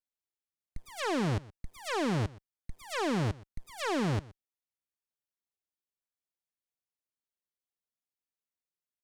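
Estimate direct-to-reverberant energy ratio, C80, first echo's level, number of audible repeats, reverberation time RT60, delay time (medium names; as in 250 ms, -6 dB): no reverb, no reverb, -21.0 dB, 1, no reverb, 122 ms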